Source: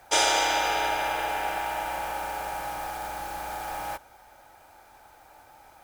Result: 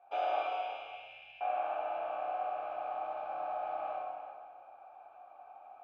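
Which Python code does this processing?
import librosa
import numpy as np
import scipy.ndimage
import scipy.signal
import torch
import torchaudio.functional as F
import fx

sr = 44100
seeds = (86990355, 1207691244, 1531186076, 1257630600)

p1 = fx.ellip_bandstop(x, sr, low_hz=140.0, high_hz=2400.0, order=3, stop_db=40, at=(0.41, 1.41))
p2 = fx.rider(p1, sr, range_db=3, speed_s=2.0)
p3 = fx.vowel_filter(p2, sr, vowel='a')
p4 = fx.air_absorb(p3, sr, metres=390.0)
p5 = p4 + fx.echo_single(p4, sr, ms=343, db=-12.0, dry=0)
y = fx.rev_plate(p5, sr, seeds[0], rt60_s=1.5, hf_ratio=0.85, predelay_ms=0, drr_db=-3.0)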